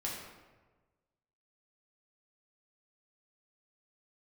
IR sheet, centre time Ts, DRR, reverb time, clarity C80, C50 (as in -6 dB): 64 ms, -4.5 dB, 1.3 s, 4.0 dB, 1.5 dB